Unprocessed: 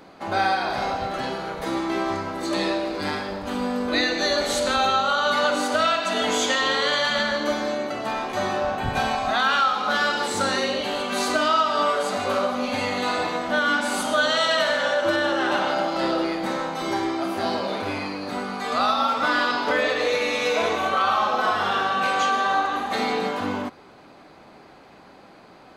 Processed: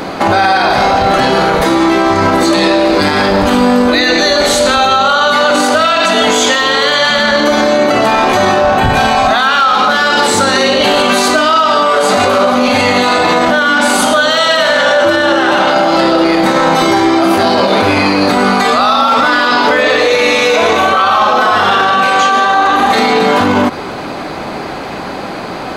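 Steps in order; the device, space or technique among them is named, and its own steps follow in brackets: loud club master (compression 2:1, threshold -26 dBFS, peak gain reduction 6 dB; hard clipper -17 dBFS, distortion -37 dB; loudness maximiser +27.5 dB); trim -1 dB

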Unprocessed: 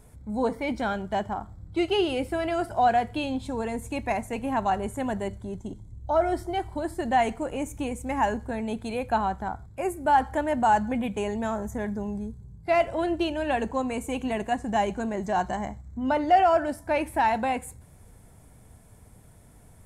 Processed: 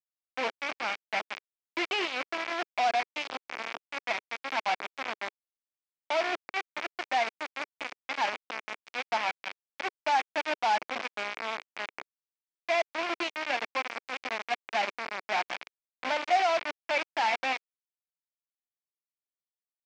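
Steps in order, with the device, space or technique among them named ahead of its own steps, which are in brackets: hand-held game console (bit crusher 4-bit; cabinet simulation 410–5000 Hz, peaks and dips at 420 Hz -5 dB, 2.3 kHz +8 dB, 4 kHz -3 dB); trim -5.5 dB

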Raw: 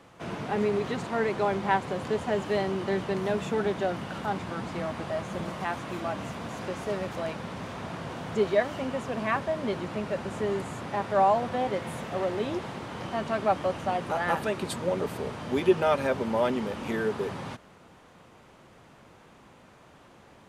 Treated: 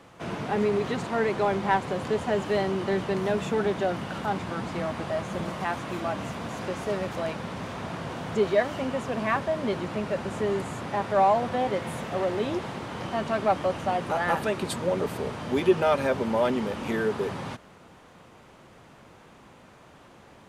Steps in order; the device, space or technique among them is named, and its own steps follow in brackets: parallel distortion (in parallel at -10.5 dB: hard clipper -24.5 dBFS, distortion -9 dB)

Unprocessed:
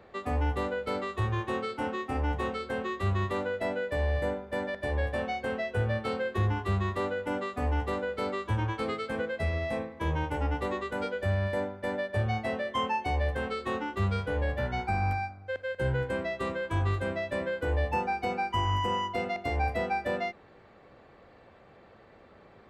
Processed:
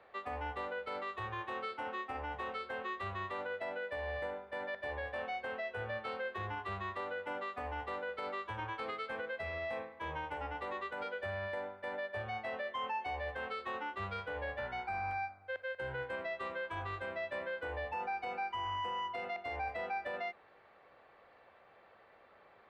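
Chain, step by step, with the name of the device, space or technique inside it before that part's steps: DJ mixer with the lows and highs turned down (three-band isolator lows -15 dB, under 520 Hz, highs -15 dB, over 4.1 kHz; peak limiter -28 dBFS, peak gain reduction 6.5 dB); trim -3 dB

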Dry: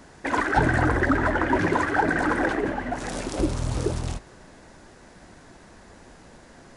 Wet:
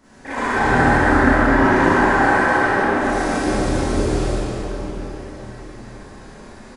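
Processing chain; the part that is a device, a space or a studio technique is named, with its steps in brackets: 1.80–2.57 s: high-pass 520 Hz 24 dB/octave; cave (delay 263 ms -8 dB; reverberation RT60 4.3 s, pre-delay 54 ms, DRR -7.5 dB); Schroeder reverb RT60 0.38 s, combs from 29 ms, DRR -7.5 dB; trim -9 dB

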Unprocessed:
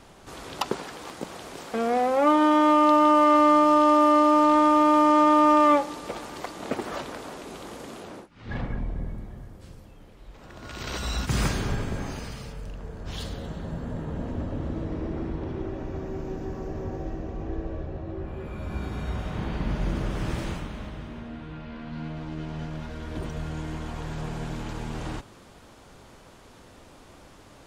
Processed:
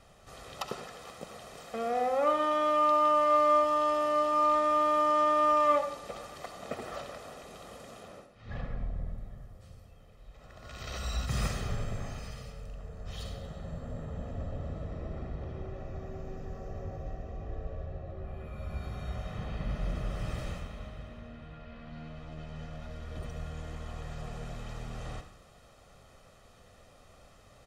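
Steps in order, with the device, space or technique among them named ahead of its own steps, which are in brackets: microphone above a desk (comb 1.6 ms, depth 60%; reverberation RT60 0.45 s, pre-delay 63 ms, DRR 8 dB); trim -9 dB

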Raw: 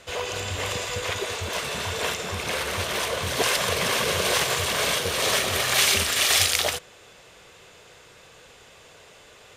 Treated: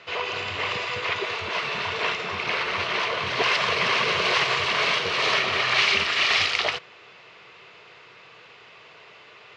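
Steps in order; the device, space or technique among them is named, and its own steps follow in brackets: overdrive pedal into a guitar cabinet (overdrive pedal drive 12 dB, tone 4.8 kHz, clips at -3 dBFS; cabinet simulation 110–4200 Hz, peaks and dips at 130 Hz +4 dB, 260 Hz -5 dB, 540 Hz -8 dB, 790 Hz -5 dB, 1.6 kHz -6 dB, 3.5 kHz -7 dB); 3.51–5.34 s: treble shelf 8.5 kHz +7 dB

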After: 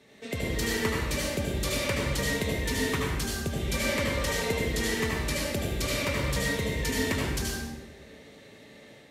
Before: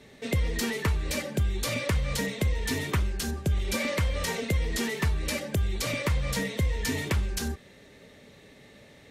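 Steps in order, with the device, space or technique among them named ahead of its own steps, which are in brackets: far laptop microphone (reverberation RT60 1.0 s, pre-delay 70 ms, DRR -2.5 dB; high-pass 160 Hz 6 dB/octave; level rider gain up to 3 dB); trim -5 dB

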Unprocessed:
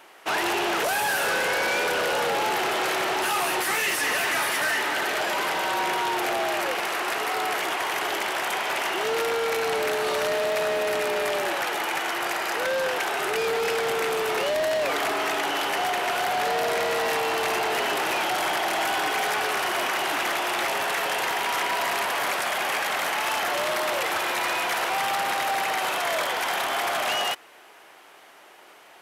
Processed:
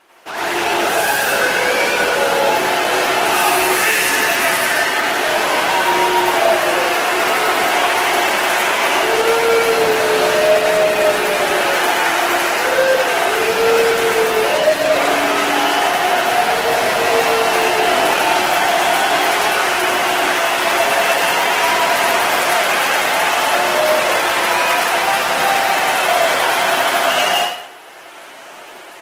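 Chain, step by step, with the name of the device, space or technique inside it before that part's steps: speakerphone in a meeting room (reverberation RT60 0.65 s, pre-delay 81 ms, DRR -5 dB; speakerphone echo 190 ms, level -19 dB; level rider gain up to 9.5 dB; trim -1.5 dB; Opus 16 kbps 48 kHz)

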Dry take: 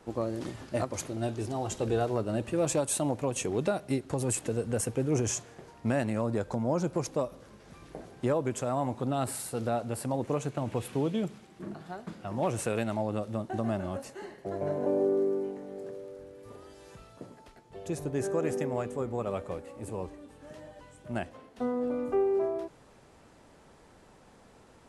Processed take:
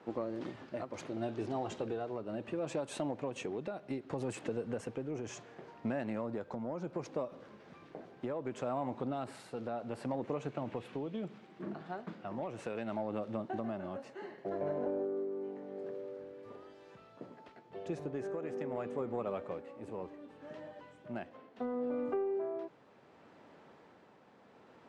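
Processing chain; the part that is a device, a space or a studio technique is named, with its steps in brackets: AM radio (band-pass 170–3300 Hz; compression, threshold -31 dBFS, peak gain reduction 8.5 dB; saturation -23.5 dBFS, distortion -24 dB; tremolo 0.68 Hz, depth 37%)

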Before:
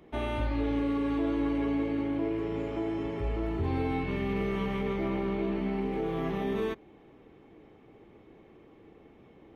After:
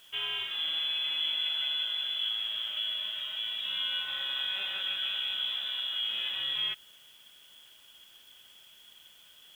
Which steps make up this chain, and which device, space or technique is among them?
scrambled radio voice (band-pass 330–3100 Hz; frequency inversion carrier 3.7 kHz; white noise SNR 28 dB); trim +1 dB

